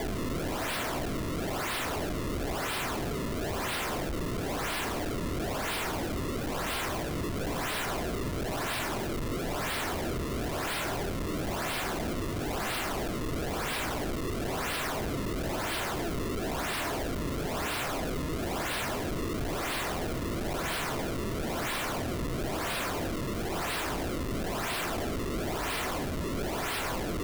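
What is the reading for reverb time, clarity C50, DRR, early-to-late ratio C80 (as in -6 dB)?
1.2 s, 13.0 dB, 9.5 dB, 15.0 dB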